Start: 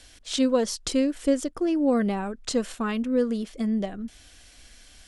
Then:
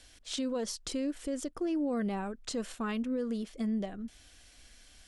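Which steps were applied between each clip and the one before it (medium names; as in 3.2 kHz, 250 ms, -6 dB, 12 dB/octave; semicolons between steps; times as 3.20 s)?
peak limiter -20 dBFS, peak gain reduction 8.5 dB; trim -6 dB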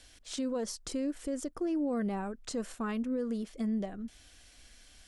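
dynamic bell 3.3 kHz, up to -6 dB, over -56 dBFS, Q 1.2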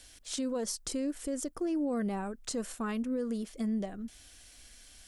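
treble shelf 7.5 kHz +10 dB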